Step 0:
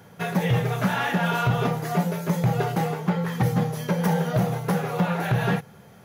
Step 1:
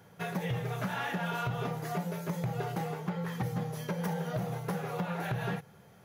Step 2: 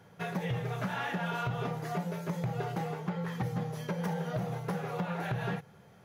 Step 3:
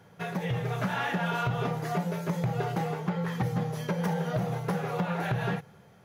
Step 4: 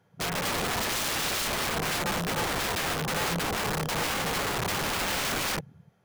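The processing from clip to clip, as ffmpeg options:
ffmpeg -i in.wav -af "equalizer=frequency=230:width=4.7:gain=-4,acompressor=threshold=-22dB:ratio=6,volume=-7.5dB" out.wav
ffmpeg -i in.wav -af "highshelf=frequency=9600:gain=-9.5" out.wav
ffmpeg -i in.wav -af "dynaudnorm=framelen=120:gausssize=9:maxgain=3dB,volume=1.5dB" out.wav
ffmpeg -i in.wav -af "afwtdn=0.0112,aeval=exprs='(mod(33.5*val(0)+1,2)-1)/33.5':channel_layout=same,volume=6dB" out.wav

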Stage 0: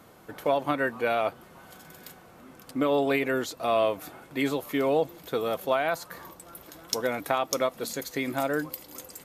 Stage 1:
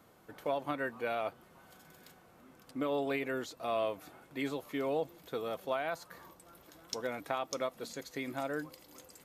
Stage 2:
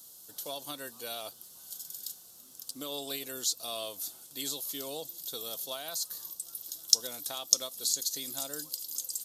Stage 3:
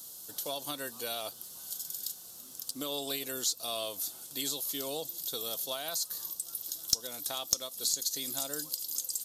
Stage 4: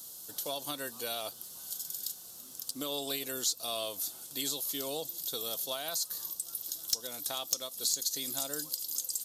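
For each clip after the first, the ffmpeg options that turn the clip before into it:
ffmpeg -i in.wav -filter_complex "[0:a]acrossover=split=8100[link_01][link_02];[link_02]acompressor=threshold=-49dB:ratio=4:attack=1:release=60[link_03];[link_01][link_03]amix=inputs=2:normalize=0,volume=-9dB" out.wav
ffmpeg -i in.wav -af "aexciter=amount=14.8:drive=8.2:freq=3500,volume=-8dB" out.wav
ffmpeg -i in.wav -af "acompressor=threshold=-42dB:ratio=1.5,aeval=exprs='(tanh(5.62*val(0)+0.2)-tanh(0.2))/5.62':channel_layout=same,volume=5.5dB" out.wav
ffmpeg -i in.wav -af "asoftclip=type=hard:threshold=-18.5dB" out.wav

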